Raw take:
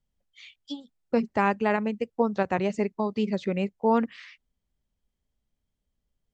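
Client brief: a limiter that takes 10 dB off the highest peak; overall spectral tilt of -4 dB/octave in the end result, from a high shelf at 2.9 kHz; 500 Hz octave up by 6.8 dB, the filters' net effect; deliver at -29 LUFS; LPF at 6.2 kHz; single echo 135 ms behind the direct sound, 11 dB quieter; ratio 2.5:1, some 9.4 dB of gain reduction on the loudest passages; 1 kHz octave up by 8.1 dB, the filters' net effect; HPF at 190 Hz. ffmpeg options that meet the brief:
-af "highpass=190,lowpass=6200,equalizer=f=500:t=o:g=6.5,equalizer=f=1000:t=o:g=7,highshelf=f=2900:g=6,acompressor=threshold=0.0501:ratio=2.5,alimiter=limit=0.0841:level=0:latency=1,aecho=1:1:135:0.282,volume=1.68"

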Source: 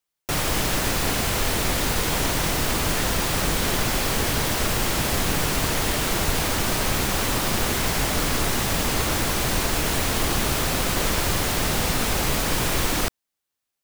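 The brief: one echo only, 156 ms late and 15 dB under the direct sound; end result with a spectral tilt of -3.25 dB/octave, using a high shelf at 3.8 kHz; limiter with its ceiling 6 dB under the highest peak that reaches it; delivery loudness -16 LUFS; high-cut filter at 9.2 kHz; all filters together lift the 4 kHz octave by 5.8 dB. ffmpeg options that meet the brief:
-af "lowpass=9200,highshelf=f=3800:g=4.5,equalizer=f=4000:t=o:g=4.5,alimiter=limit=0.2:level=0:latency=1,aecho=1:1:156:0.178,volume=2.11"

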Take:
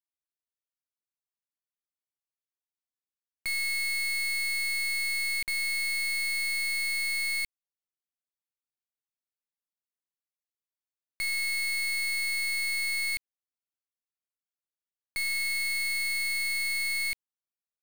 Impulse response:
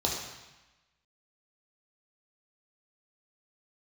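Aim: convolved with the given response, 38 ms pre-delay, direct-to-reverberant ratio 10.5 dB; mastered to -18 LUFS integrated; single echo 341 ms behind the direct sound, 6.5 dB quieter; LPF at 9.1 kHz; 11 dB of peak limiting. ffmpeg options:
-filter_complex "[0:a]lowpass=9100,alimiter=level_in=5.96:limit=0.0631:level=0:latency=1,volume=0.168,aecho=1:1:341:0.473,asplit=2[s0][s1];[1:a]atrim=start_sample=2205,adelay=38[s2];[s1][s2]afir=irnorm=-1:irlink=0,volume=0.112[s3];[s0][s3]amix=inputs=2:normalize=0,volume=15"

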